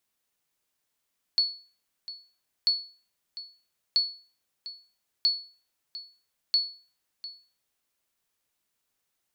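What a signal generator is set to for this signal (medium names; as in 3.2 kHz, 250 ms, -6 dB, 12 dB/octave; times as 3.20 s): sonar ping 4.41 kHz, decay 0.39 s, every 1.29 s, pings 5, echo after 0.70 s, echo -16 dB -16 dBFS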